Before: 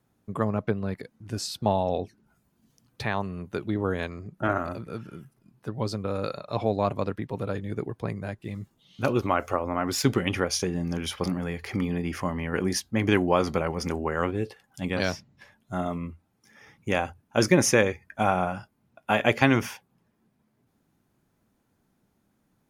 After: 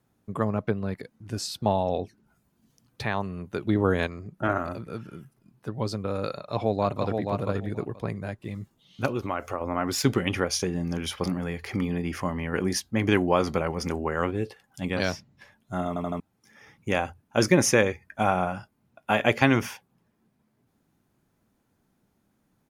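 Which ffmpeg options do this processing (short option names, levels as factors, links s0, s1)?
-filter_complex "[0:a]asplit=2[s0][s1];[s1]afade=t=in:st=6.32:d=0.01,afade=t=out:st=7.21:d=0.01,aecho=0:1:480|960|1440:0.595662|0.0893493|0.0134024[s2];[s0][s2]amix=inputs=2:normalize=0,asettb=1/sr,asplit=3[s3][s4][s5];[s3]atrim=end=9.064[s6];[s4]atrim=start=9.06:end=9.61,asetpts=PTS-STARTPTS,afade=t=in:d=0.004:c=qsin,afade=t=out:st=0.546:d=0.004:c=qsin,acompressor=threshold=0.0224:ratio=1.5:attack=3.2:release=140:knee=1:detection=peak[s7];[s5]atrim=start=9.606[s8];[s6][s7]acrossfade=d=0.004:c1=hsin:c2=qsin[s9];[s9][s8]acrossfade=d=0.004:c1=qsin:c2=hsin,asplit=7[s10][s11][s12][s13][s14][s15][s16];[s10]atrim=end=3.672[s17];[s11]atrim=start=3.668:end=4.072,asetpts=PTS-STARTPTS,volume=1.68[s18];[s12]atrim=start=4.068:end=15.962[s19];[s13]atrim=start=15.878:end=15.962[s20];[s14]atrim=start=15.878:end=15.962[s21];[s15]atrim=start=15.878:end=15.962[s22];[s16]atrim=start=16.198[s23];[s17][s18]acrossfade=d=0.004:c1=hsin:c2=hsin[s24];[s24][s19]acrossfade=d=0.004:c1=hsin:c2=hsin[s25];[s25][s20]acrossfade=d=0.004:c1=hsin:c2=hsin[s26];[s26][s21]acrossfade=d=0.004:c1=hsin:c2=hsin[s27];[s27][s22]acrossfade=d=0.004:c1=hsin:c2=hsin[s28];[s28][s23]acrossfade=d=0.004:c1=hsin:c2=hsin"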